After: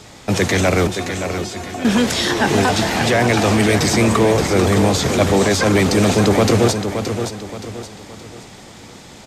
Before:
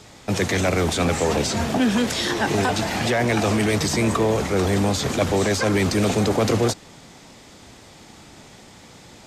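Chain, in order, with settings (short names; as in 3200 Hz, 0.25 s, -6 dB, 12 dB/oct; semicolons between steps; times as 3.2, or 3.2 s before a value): 0.87–1.85 resonator 360 Hz, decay 0.16 s, harmonics all, mix 90%; feedback echo 0.572 s, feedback 38%, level -8 dB; gain +5 dB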